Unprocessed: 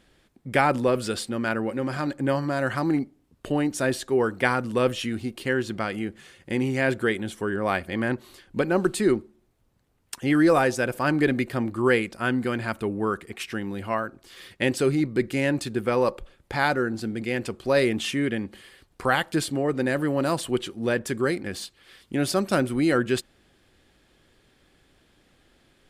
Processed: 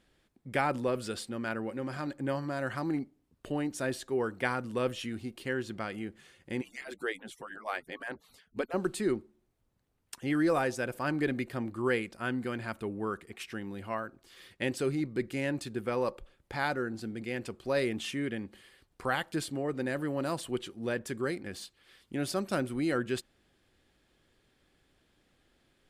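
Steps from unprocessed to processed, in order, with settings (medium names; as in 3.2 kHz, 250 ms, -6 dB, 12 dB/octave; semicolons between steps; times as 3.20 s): 6.61–8.74 s: harmonic-percussive separation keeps percussive; trim -8.5 dB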